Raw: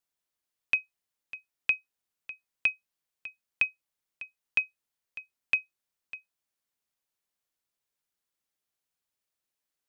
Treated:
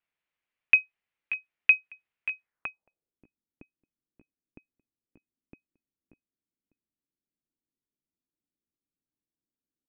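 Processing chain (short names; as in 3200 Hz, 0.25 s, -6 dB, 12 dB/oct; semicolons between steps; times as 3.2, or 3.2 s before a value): outdoor echo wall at 100 m, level -10 dB; low-pass sweep 2400 Hz -> 290 Hz, 2.4–3.2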